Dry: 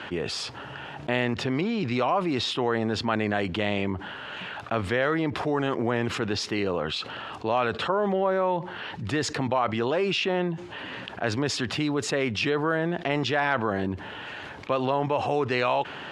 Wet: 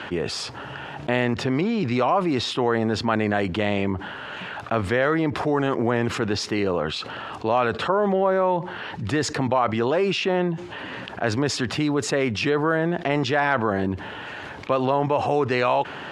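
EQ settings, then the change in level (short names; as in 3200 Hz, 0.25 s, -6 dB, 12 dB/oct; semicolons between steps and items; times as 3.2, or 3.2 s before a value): dynamic EQ 3200 Hz, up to -4 dB, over -44 dBFS, Q 1.2; +4.0 dB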